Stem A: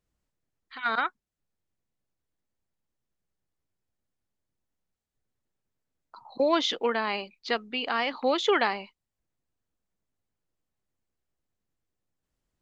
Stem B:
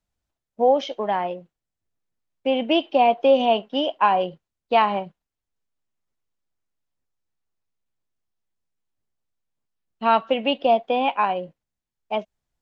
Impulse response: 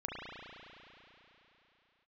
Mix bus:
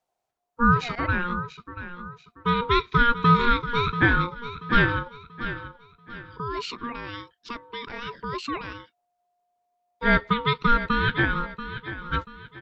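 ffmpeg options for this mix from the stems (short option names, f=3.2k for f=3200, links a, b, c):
-filter_complex "[0:a]equalizer=f=310:w=1.5:g=8.5,alimiter=limit=-17dB:level=0:latency=1,volume=-3.5dB[a];[1:a]volume=1.5dB,asplit=2[b][c];[c]volume=-12dB,aecho=0:1:685|1370|2055|2740|3425:1|0.36|0.13|0.0467|0.0168[d];[a][b][d]amix=inputs=3:normalize=0,aeval=exprs='val(0)*sin(2*PI*710*n/s)':c=same"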